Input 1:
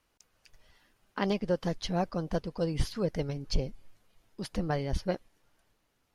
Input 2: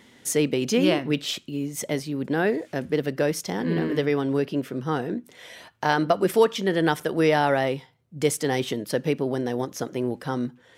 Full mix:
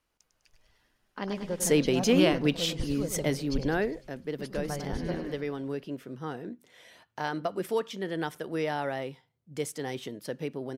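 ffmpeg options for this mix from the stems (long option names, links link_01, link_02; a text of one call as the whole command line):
ffmpeg -i stem1.wav -i stem2.wav -filter_complex "[0:a]volume=-5dB,asplit=2[link_01][link_02];[link_02]volume=-8dB[link_03];[1:a]adelay=1350,volume=-1.5dB,afade=type=out:start_time=3.47:duration=0.58:silence=0.354813[link_04];[link_03]aecho=0:1:101|202|303|404|505|606|707|808|909:1|0.59|0.348|0.205|0.121|0.0715|0.0422|0.0249|0.0147[link_05];[link_01][link_04][link_05]amix=inputs=3:normalize=0" out.wav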